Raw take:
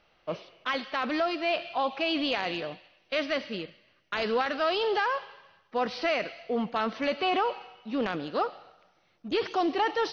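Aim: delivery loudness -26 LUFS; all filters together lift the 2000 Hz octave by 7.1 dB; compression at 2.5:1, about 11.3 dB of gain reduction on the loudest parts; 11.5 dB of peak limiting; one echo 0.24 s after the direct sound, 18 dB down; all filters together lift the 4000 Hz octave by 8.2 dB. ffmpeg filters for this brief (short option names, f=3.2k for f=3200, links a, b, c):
-af "equalizer=f=2k:t=o:g=6.5,equalizer=f=4k:t=o:g=8.5,acompressor=threshold=-37dB:ratio=2.5,alimiter=level_in=4dB:limit=-24dB:level=0:latency=1,volume=-4dB,aecho=1:1:240:0.126,volume=12.5dB"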